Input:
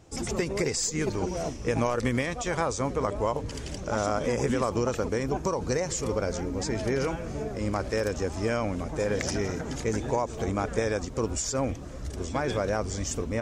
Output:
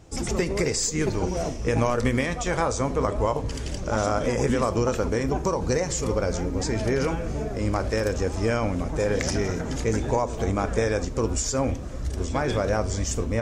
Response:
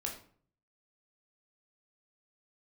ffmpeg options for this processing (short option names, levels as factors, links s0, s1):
-filter_complex "[0:a]lowshelf=f=64:g=6.5,asplit=2[s0][s1];[1:a]atrim=start_sample=2205[s2];[s1][s2]afir=irnorm=-1:irlink=0,volume=0.473[s3];[s0][s3]amix=inputs=2:normalize=0"